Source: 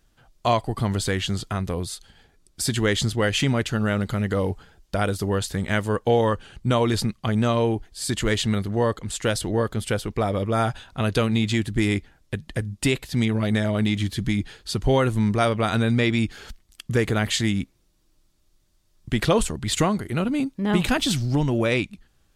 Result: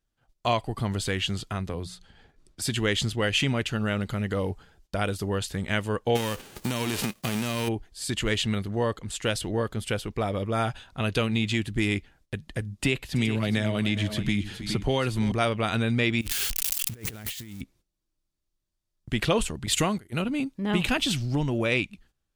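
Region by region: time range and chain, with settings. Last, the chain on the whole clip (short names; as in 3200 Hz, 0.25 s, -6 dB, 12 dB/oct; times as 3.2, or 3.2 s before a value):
1.67–2.62 high shelf 7600 Hz -11.5 dB + notches 60/120/180 Hz + three-band squash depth 40%
6.15–7.67 spectral whitening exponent 0.3 + bell 240 Hz +10.5 dB 2.8 oct + compressor 10:1, threshold -19 dBFS
12.79–15.32 tapped delay 0.326/0.417 s -18/-13 dB + three-band squash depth 70%
16.21–17.61 switching spikes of -16.5 dBFS + low shelf 240 Hz +4.5 dB + negative-ratio compressor -27 dBFS, ratio -0.5
19.66–20.22 high shelf 7100 Hz +9.5 dB + gate -28 dBFS, range -15 dB
whole clip: gate -53 dBFS, range -13 dB; dynamic EQ 2700 Hz, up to +7 dB, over -44 dBFS, Q 2.3; gain -4.5 dB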